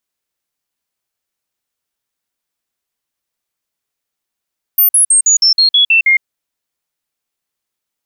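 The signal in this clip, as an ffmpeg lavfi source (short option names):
-f lavfi -i "aevalsrc='0.501*clip(min(mod(t,0.16),0.11-mod(t,0.16))/0.005,0,1)*sin(2*PI*13500*pow(2,-floor(t/0.16)/3)*mod(t,0.16))':d=1.44:s=44100"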